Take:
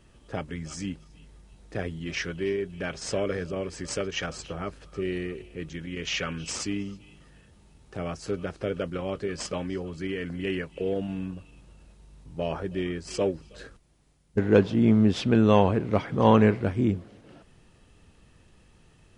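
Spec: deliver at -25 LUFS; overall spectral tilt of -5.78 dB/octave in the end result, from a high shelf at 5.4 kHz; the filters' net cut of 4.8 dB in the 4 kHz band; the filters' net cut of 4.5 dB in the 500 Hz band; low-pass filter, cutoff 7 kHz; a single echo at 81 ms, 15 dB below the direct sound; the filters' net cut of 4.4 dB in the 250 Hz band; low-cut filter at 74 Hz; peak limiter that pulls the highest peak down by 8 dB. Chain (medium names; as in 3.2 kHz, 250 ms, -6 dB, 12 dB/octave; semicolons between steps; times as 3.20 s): high-pass 74 Hz; low-pass 7 kHz; peaking EQ 250 Hz -4.5 dB; peaking EQ 500 Hz -4 dB; peaking EQ 4 kHz -4.5 dB; treble shelf 5.4 kHz -5 dB; peak limiter -15.5 dBFS; delay 81 ms -15 dB; trim +8 dB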